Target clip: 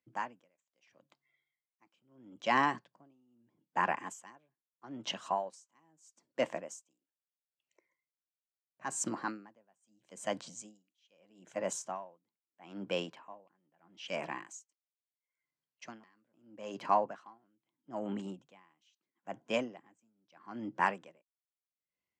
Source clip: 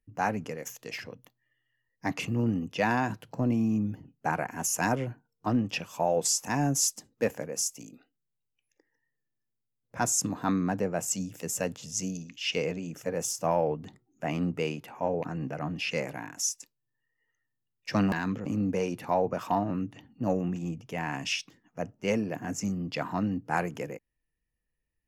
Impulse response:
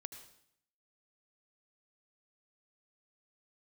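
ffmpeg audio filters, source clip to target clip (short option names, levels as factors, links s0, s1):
-af "highpass=160,equalizer=f=600:t=q:w=4:g=4,equalizer=f=910:t=q:w=4:g=7,equalizer=f=1400:t=q:w=4:g=6,equalizer=f=2200:t=q:w=4:g=4,equalizer=f=4000:t=q:w=4:g=6,lowpass=f=6800:w=0.5412,lowpass=f=6800:w=1.3066,asetrate=49833,aresample=44100,aeval=exprs='val(0)*pow(10,-39*(0.5-0.5*cos(2*PI*0.77*n/s))/20)':c=same,volume=0.631"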